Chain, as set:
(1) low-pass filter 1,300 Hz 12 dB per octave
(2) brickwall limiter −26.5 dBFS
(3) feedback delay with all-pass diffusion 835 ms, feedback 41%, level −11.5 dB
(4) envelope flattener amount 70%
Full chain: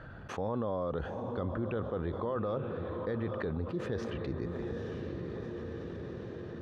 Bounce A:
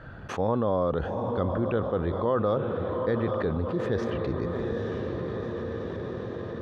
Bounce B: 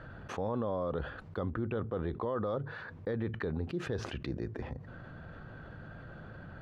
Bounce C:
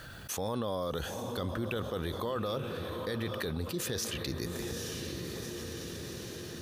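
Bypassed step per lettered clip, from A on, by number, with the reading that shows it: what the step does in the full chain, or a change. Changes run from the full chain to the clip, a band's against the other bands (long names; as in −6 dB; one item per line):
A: 2, average gain reduction 3.0 dB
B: 3, change in momentary loudness spread +7 LU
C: 1, 4 kHz band +16.0 dB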